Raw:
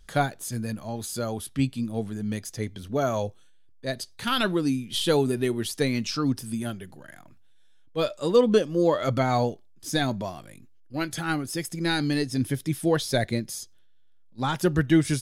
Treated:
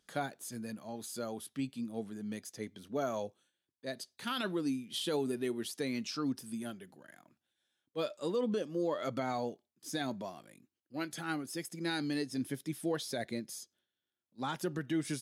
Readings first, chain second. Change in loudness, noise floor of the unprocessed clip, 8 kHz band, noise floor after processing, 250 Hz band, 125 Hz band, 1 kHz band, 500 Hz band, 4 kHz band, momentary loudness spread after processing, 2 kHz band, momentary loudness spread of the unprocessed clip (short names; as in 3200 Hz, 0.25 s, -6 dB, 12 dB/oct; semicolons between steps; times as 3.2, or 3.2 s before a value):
-11.0 dB, -52 dBFS, -9.5 dB, under -85 dBFS, -10.5 dB, -16.5 dB, -11.0 dB, -11.5 dB, -10.5 dB, 11 LU, -11.0 dB, 12 LU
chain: limiter -16 dBFS, peak gain reduction 7.5 dB; Chebyshev high-pass 220 Hz, order 2; gain -8.5 dB